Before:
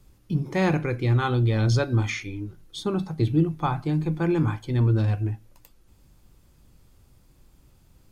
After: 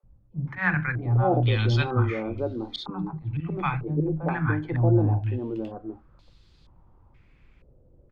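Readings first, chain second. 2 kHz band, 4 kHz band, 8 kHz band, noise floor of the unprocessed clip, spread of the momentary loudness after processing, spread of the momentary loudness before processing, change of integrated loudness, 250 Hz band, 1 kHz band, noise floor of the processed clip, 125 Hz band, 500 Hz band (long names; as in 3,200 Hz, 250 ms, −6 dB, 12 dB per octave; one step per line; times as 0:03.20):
+4.0 dB, 0.0 dB, can't be measured, −58 dBFS, 12 LU, 10 LU, −1.5 dB, −2.5 dB, +1.0 dB, −58 dBFS, −1.0 dB, 0.0 dB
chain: volume swells 111 ms
three-band delay without the direct sound highs, lows, mids 30/630 ms, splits 220/810 Hz
low-pass on a step sequencer 2.1 Hz 530–4,100 Hz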